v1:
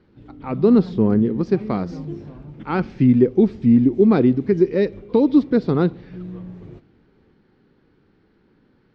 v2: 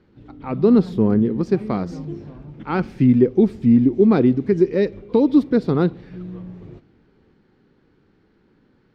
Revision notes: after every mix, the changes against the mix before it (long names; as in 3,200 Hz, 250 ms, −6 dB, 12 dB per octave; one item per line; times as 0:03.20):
speech: remove low-pass filter 5,900 Hz 24 dB per octave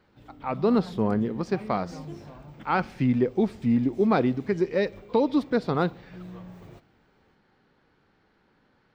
background: remove high-frequency loss of the air 120 metres
master: add low shelf with overshoot 500 Hz −7.5 dB, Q 1.5